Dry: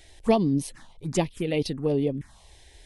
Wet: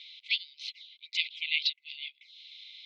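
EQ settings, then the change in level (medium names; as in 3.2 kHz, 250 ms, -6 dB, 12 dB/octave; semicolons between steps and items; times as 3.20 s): brick-wall FIR high-pass 2 kHz; resonant low-pass 3.9 kHz, resonance Q 4.1; distance through air 220 m; +7.0 dB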